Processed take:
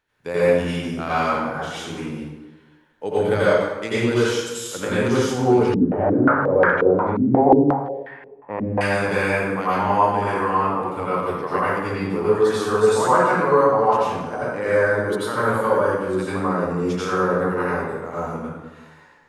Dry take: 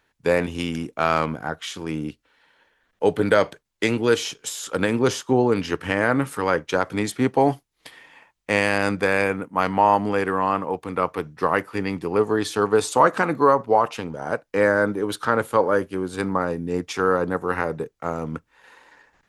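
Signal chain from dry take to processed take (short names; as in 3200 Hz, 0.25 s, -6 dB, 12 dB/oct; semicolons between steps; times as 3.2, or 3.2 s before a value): plate-style reverb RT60 1.2 s, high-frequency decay 0.65×, pre-delay 75 ms, DRR -10 dB; 5.74–8.81 stepped low-pass 5.6 Hz 250–1700 Hz; gain -9.5 dB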